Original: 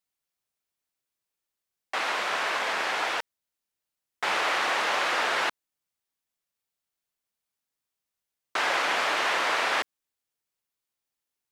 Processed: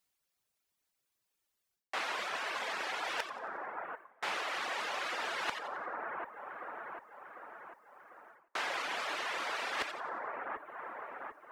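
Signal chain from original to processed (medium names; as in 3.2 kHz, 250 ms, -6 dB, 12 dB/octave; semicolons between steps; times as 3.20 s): two-band feedback delay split 1.6 kHz, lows 747 ms, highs 91 ms, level -14 dB; reverse; compression 6:1, threshold -38 dBFS, peak gain reduction 14.5 dB; reverse; reverb removal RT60 0.93 s; trim +5 dB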